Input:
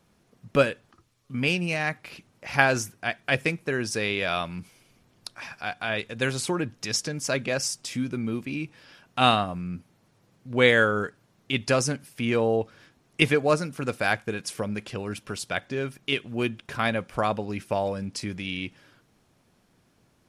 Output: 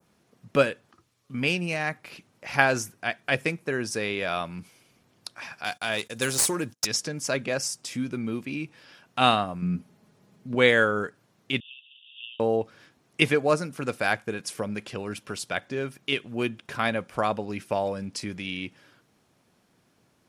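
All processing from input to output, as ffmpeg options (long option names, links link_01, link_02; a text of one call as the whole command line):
ffmpeg -i in.wav -filter_complex "[0:a]asettb=1/sr,asplit=3[link_01][link_02][link_03];[link_01]atrim=end=5.644[link_04];[link_02]atrim=start=5.64:end=6.87,asetpts=PTS-STARTPTS,afade=type=in:duration=0.004:curve=qsin,afade=type=out:start_time=1.226:duration=0.004:curve=qsin,bass=frequency=250:gain=-1,treble=frequency=4000:gain=15,aeval=exprs='clip(val(0),-1,0.0891)':channel_layout=same,agate=range=-27dB:threshold=-46dB:ratio=16:release=100:detection=peak[link_05];[link_03]atrim=start=6.866[link_06];[link_04][link_05]acrossfade=duration=0.004:curve1=hsin:curve2=qsin[link_07];[link_07][link_06]acrossfade=duration=0.004:curve1=qsin:curve2=hsin,asettb=1/sr,asplit=3[link_08][link_09][link_10];[link_08]atrim=end=9.624[link_11];[link_09]atrim=start=9.62:end=10.55,asetpts=PTS-STARTPTS,afade=type=in:duration=0.004:curve=qsin,afade=type=out:start_time=0.926:duration=0.004:curve=qsin,lowshelf=frequency=470:gain=7,aecho=1:1:4.8:0.47,atrim=end_sample=41013[link_12];[link_10]atrim=start=10.546[link_13];[link_11][link_12]acrossfade=duration=0.004:curve1=hsin:curve2=qsin[link_14];[link_14][link_13]acrossfade=duration=0.004:curve1=qsin:curve2=hsin,asettb=1/sr,asplit=3[link_15][link_16][link_17];[link_15]atrim=end=11.604[link_18];[link_16]atrim=start=11.6:end=12.4,asetpts=PTS-STARTPTS,afade=type=in:duration=0.004:curve=qsin,afade=type=out:start_time=0.796:duration=0.004:curve=qsin,aeval=exprs='val(0)+0.5*0.0266*sgn(val(0))':channel_layout=same,acompressor=threshold=-26dB:ratio=2:attack=3.2:release=140:knee=1:detection=peak,asuperpass=centerf=3100:order=20:qfactor=3[link_19];[link_17]atrim=start=12.396[link_20];[link_18][link_19]acrossfade=duration=0.004:curve1=hsin:curve2=qsin[link_21];[link_21][link_20]acrossfade=duration=0.004:curve1=qsin:curve2=hsin,highpass=frequency=130:poles=1,adynamicequalizer=threshold=0.01:dfrequency=3300:dqfactor=0.79:tfrequency=3300:tqfactor=0.79:attack=5:release=100:ratio=0.375:range=2.5:mode=cutabove:tftype=bell" out.wav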